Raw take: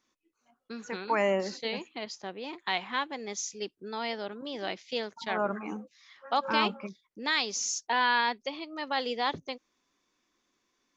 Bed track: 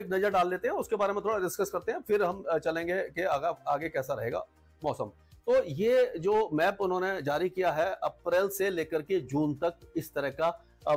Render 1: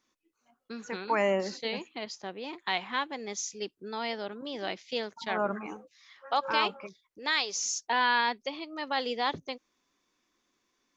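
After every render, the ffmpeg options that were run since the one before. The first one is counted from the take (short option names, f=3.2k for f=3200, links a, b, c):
-filter_complex "[0:a]asettb=1/sr,asplit=3[a][b][c];[a]atrim=end=5.664[d];[b]atrim=start=5.66:end=7.65,asetpts=PTS-STARTPTS,afade=t=in:d=0.004:c=qsin,afade=t=out:st=1.986:d=0.004:c=qsin,equalizer=f=220:t=o:w=0.6:g=-12[e];[c]atrim=start=7.646[f];[d][e]acrossfade=d=0.004:c1=hsin:c2=qsin[g];[g][f]acrossfade=d=0.004:c1=qsin:c2=hsin"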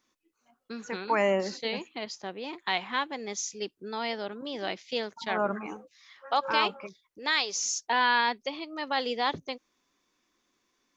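-af "volume=1.5dB"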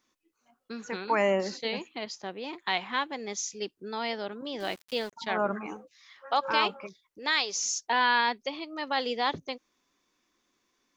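-filter_complex "[0:a]asettb=1/sr,asplit=3[a][b][c];[a]atrim=end=4.604[d];[b]atrim=start=4.6:end=5.13,asetpts=PTS-STARTPTS,afade=t=in:d=0.004:c=qsin,afade=t=out:st=0.526:d=0.004:c=qsin,aeval=exprs='val(0)*gte(abs(val(0)),0.00668)':c=same[e];[c]atrim=start=5.126[f];[d][e]acrossfade=d=0.004:c1=hsin:c2=qsin[g];[g][f]acrossfade=d=0.004:c1=qsin:c2=hsin"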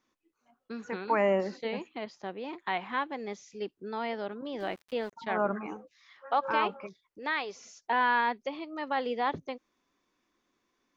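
-filter_complex "[0:a]acrossover=split=2900[a][b];[b]acompressor=threshold=-47dB:ratio=4:attack=1:release=60[c];[a][c]amix=inputs=2:normalize=0,highshelf=f=3.3k:g=-9.5"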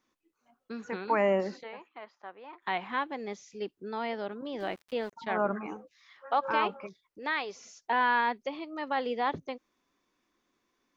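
-filter_complex "[0:a]asplit=3[a][b][c];[a]afade=t=out:st=1.62:d=0.02[d];[b]bandpass=f=1.2k:t=q:w=1.5,afade=t=in:st=1.62:d=0.02,afade=t=out:st=2.61:d=0.02[e];[c]afade=t=in:st=2.61:d=0.02[f];[d][e][f]amix=inputs=3:normalize=0"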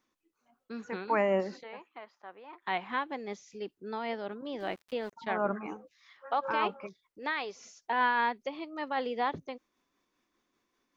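-af "tremolo=f=5.1:d=0.31"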